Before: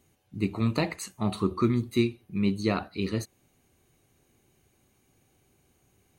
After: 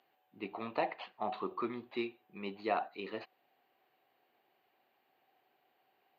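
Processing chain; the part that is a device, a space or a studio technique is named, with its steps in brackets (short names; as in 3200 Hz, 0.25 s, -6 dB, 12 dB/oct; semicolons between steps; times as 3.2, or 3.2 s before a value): toy sound module (decimation joined by straight lines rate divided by 4×; pulse-width modulation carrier 12000 Hz; speaker cabinet 580–3500 Hz, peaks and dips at 750 Hz +8 dB, 1300 Hz -5 dB, 2200 Hz -5 dB); 0.77–1.34 high shelf 4000 Hz -5.5 dB; gain -2 dB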